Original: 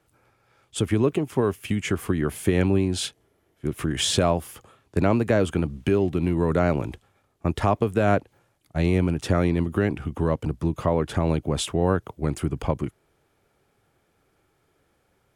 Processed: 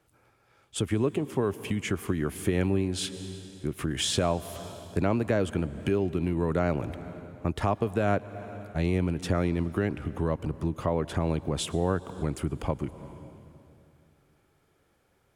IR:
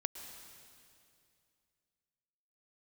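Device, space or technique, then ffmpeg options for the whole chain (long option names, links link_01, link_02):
ducked reverb: -filter_complex "[0:a]asplit=3[link_01][link_02][link_03];[1:a]atrim=start_sample=2205[link_04];[link_02][link_04]afir=irnorm=-1:irlink=0[link_05];[link_03]apad=whole_len=677023[link_06];[link_05][link_06]sidechaincompress=threshold=-31dB:ratio=3:attack=16:release=279,volume=0dB[link_07];[link_01][link_07]amix=inputs=2:normalize=0,volume=-7dB"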